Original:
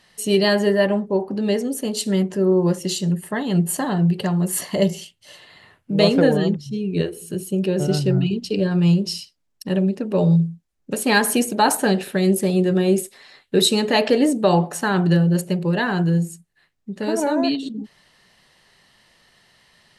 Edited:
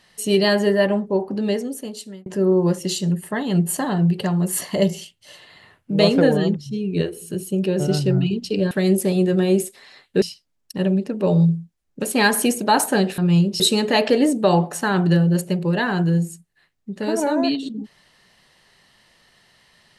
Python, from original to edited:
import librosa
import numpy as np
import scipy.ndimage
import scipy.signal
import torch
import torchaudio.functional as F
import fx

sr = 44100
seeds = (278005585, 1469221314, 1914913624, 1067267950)

y = fx.edit(x, sr, fx.fade_out_span(start_s=1.39, length_s=0.87),
    fx.swap(start_s=8.71, length_s=0.42, other_s=12.09, other_length_s=1.51), tone=tone)